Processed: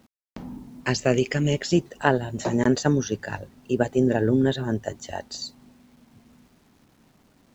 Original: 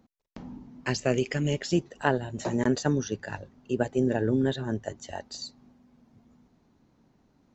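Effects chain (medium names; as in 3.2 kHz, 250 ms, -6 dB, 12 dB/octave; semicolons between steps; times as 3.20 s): bit crusher 11-bit; trim +4.5 dB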